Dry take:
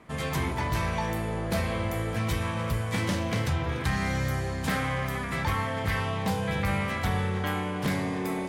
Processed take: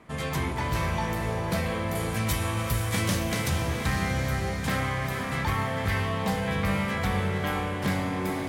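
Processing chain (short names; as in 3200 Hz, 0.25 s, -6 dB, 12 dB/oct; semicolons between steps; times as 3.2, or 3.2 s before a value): 1.95–3.67 high shelf 5800 Hz +11.5 dB; diffused feedback echo 0.48 s, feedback 47%, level -7 dB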